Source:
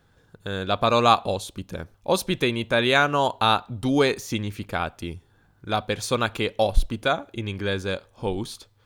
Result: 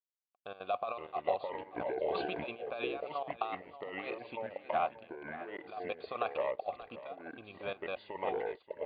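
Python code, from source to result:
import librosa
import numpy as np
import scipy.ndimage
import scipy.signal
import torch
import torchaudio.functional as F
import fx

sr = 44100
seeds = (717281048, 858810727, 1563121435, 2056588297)

y = fx.peak_eq(x, sr, hz=1400.0, db=-9.5, octaves=2.6, at=(7.07, 7.63))
y = fx.over_compress(y, sr, threshold_db=-23.0, ratio=-0.5)
y = fx.auto_swell(y, sr, attack_ms=143.0, at=(3.45, 4.12))
y = fx.step_gate(y, sr, bpm=200, pattern='xxxx..x.x', floor_db=-12.0, edge_ms=4.5)
y = np.sign(y) * np.maximum(np.abs(y) - 10.0 ** (-44.0 / 20.0), 0.0)
y = fx.vowel_filter(y, sr, vowel='a')
y = fx.echo_pitch(y, sr, ms=398, semitones=-4, count=2, db_per_echo=-3.0)
y = fx.brickwall_lowpass(y, sr, high_hz=4800.0)
y = y + 10.0 ** (-15.0 / 20.0) * np.pad(y, (int(581 * sr / 1000.0), 0))[:len(y)]
y = fx.sustainer(y, sr, db_per_s=20.0, at=(1.76, 2.51), fade=0.02)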